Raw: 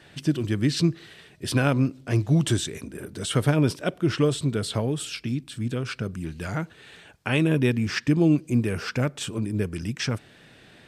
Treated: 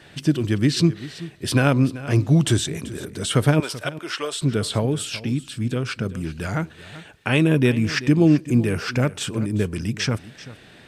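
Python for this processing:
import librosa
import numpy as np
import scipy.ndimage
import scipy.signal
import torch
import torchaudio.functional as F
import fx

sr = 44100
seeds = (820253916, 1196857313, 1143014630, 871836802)

p1 = fx.highpass(x, sr, hz=780.0, slope=12, at=(3.6, 4.42))
p2 = p1 + fx.echo_single(p1, sr, ms=385, db=-16.5, dry=0)
y = F.gain(torch.from_numpy(p2), 4.0).numpy()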